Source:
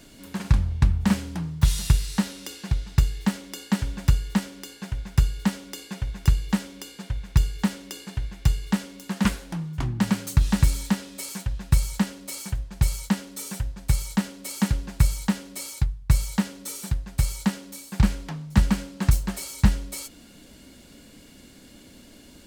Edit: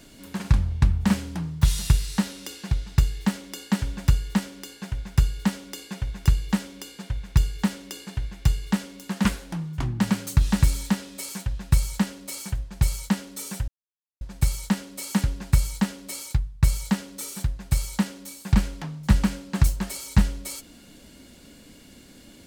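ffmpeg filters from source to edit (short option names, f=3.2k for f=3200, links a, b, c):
-filter_complex "[0:a]asplit=2[a][b];[a]atrim=end=13.68,asetpts=PTS-STARTPTS,afade=t=out:st=13.676:d=0.004:c=hsin,apad=pad_dur=0.53[c];[b]atrim=start=13.68,asetpts=PTS-STARTPTS,afade=t=in:d=0.004:c=hsin[d];[c][d]concat=n=2:v=0:a=1"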